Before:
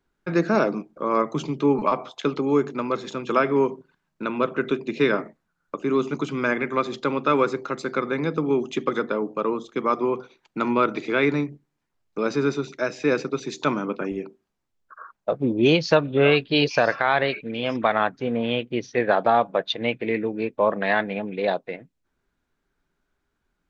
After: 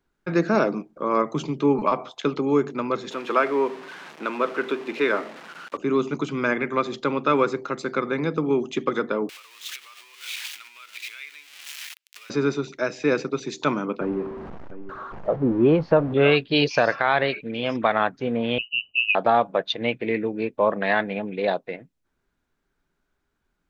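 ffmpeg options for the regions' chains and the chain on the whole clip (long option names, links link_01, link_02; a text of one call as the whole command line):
ffmpeg -i in.wav -filter_complex "[0:a]asettb=1/sr,asplit=3[link_01][link_02][link_03];[link_01]atrim=end=3.114[link_04];[link_02]atrim=start=3.11:end=5.77,asetpts=PTS-STARTPTS,afade=type=in:duration=0.004:curve=qsin,afade=type=out:start_time=2.656:duration=0.004:curve=qsin,aeval=exprs='val(0)+0.5*0.0251*sgn(val(0))':channel_layout=same,highpass=230,lowpass=2600,aemphasis=mode=production:type=bsi[link_05];[link_03]atrim=start=5.766[link_06];[link_04][link_05]acrossfade=duration=0.004:curve1=hsin:curve2=qsin[link_07];[link_07][link_06]acrossfade=duration=0.004:curve1=qsin:curve2=hsin,asettb=1/sr,asplit=3[link_08][link_09][link_10];[link_08]atrim=end=9.294[link_11];[link_09]atrim=start=9.29:end=12.3,asetpts=PTS-STARTPTS,afade=type=in:duration=0.004:curve=qsin,afade=type=out:start_time=3.006:duration=0.004:curve=qsin,aeval=exprs='val(0)+0.5*0.0447*sgn(val(0))':channel_layout=same,acompressor=threshold=-31dB:ratio=8:attack=3.2:release=140:knee=1:detection=peak,highpass=frequency=2600:width_type=q:width=1.8[link_12];[link_10]atrim=start=12.296[link_13];[link_11][link_12]acrossfade=duration=0.004:curve1=hsin:curve2=qsin[link_14];[link_14][link_13]acrossfade=duration=0.004:curve1=qsin:curve2=hsin,asettb=1/sr,asplit=3[link_15][link_16][link_17];[link_15]atrim=end=14.014[link_18];[link_16]atrim=start=14.01:end=16.14,asetpts=PTS-STARTPTS,afade=type=in:duration=0.004:curve=qsin,afade=type=out:start_time=2.126:duration=0.004:curve=qsin,aeval=exprs='val(0)+0.5*0.0376*sgn(val(0))':channel_layout=same,lowpass=1100,aecho=1:1:701:0.178,atrim=end_sample=93933[link_19];[link_17]atrim=start=16.136[link_20];[link_18][link_19]acrossfade=duration=0.004:curve1=hsin:curve2=qsin[link_21];[link_21][link_20]acrossfade=duration=0.004:curve1=qsin:curve2=hsin,asettb=1/sr,asplit=3[link_22][link_23][link_24];[link_22]atrim=end=18.584[link_25];[link_23]atrim=start=18.58:end=19.15,asetpts=PTS-STARTPTS,afade=type=in:duration=0.004:curve=qsin,afade=type=out:start_time=0.566:duration=0.004:curve=qsin,asuperstop=centerf=1400:order=20:qfactor=0.6,lowpass=frequency=2600:width_type=q:width=0.5098,lowpass=frequency=2600:width_type=q:width=0.6013,lowpass=frequency=2600:width_type=q:width=0.9,lowpass=frequency=2600:width_type=q:width=2.563,afreqshift=-3100[link_26];[link_24]atrim=start=19.146[link_27];[link_25][link_26]acrossfade=duration=0.004:curve1=hsin:curve2=qsin[link_28];[link_28][link_27]acrossfade=duration=0.004:curve1=qsin:curve2=hsin" out.wav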